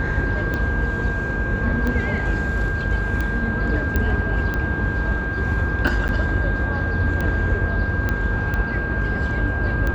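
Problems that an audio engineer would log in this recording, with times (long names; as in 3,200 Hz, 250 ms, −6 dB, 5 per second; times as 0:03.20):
mains buzz 50 Hz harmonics 33 −27 dBFS
scratch tick 45 rpm −13 dBFS
whistle 1,600 Hz −26 dBFS
0:03.96: click −9 dBFS
0:06.08–0:06.09: drop-out 9.6 ms
0:08.09: click −11 dBFS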